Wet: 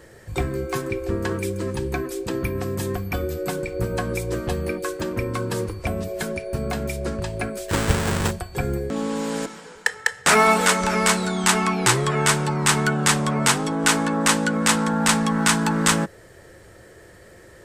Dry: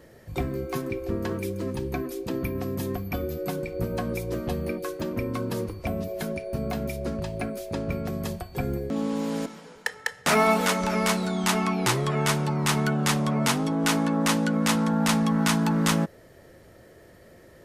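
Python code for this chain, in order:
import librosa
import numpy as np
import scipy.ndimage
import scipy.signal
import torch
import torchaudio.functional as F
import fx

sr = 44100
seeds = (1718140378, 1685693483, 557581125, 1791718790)

y = fx.halfwave_hold(x, sr, at=(7.68, 8.3), fade=0.02)
y = fx.graphic_eq_31(y, sr, hz=(160, 250, 630, 1600, 8000, 12500), db=(-5, -9, -5, 4, 8, -5))
y = y * librosa.db_to_amplitude(5.5)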